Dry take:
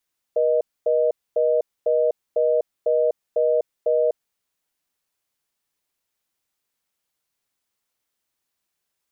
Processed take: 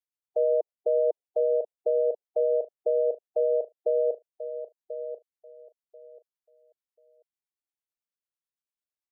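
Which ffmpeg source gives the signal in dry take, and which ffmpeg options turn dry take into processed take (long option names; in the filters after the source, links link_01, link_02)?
-f lavfi -i "aevalsrc='0.112*(sin(2*PI*480*t)+sin(2*PI*620*t))*clip(min(mod(t,0.5),0.25-mod(t,0.5))/0.005,0,1)':duration=3.79:sample_rate=44100"
-filter_complex "[0:a]afftdn=noise_reduction=18:noise_floor=-33,acrossover=split=570[link_01][link_02];[link_01]aeval=exprs='val(0)*(1-0.7/2+0.7/2*cos(2*PI*9*n/s))':channel_layout=same[link_03];[link_02]aeval=exprs='val(0)*(1-0.7/2-0.7/2*cos(2*PI*9*n/s))':channel_layout=same[link_04];[link_03][link_04]amix=inputs=2:normalize=0,asplit=2[link_05][link_06];[link_06]aecho=0:1:1038|2076|3114:0.282|0.0564|0.0113[link_07];[link_05][link_07]amix=inputs=2:normalize=0"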